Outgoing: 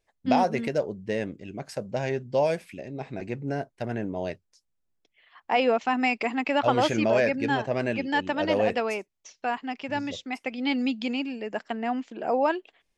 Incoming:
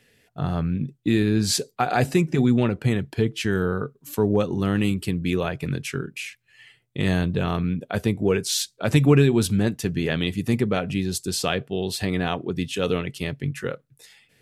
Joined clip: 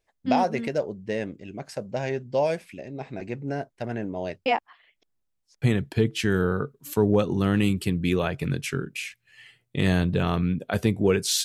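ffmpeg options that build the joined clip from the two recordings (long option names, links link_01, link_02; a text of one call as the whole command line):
ffmpeg -i cue0.wav -i cue1.wav -filter_complex "[0:a]apad=whole_dur=11.44,atrim=end=11.44,asplit=2[link_01][link_02];[link_01]atrim=end=4.462[link_03];[link_02]atrim=start=4.458:end=5.622,asetpts=PTS-STARTPTS,areverse[link_04];[1:a]atrim=start=2.828:end=8.65[link_05];[link_03][link_04]acrossfade=duration=0.004:curve1=hsin:curve2=hsin[link_06];[link_06][link_05]acrossfade=duration=0.004:curve1=hsin:curve2=hsin" out.wav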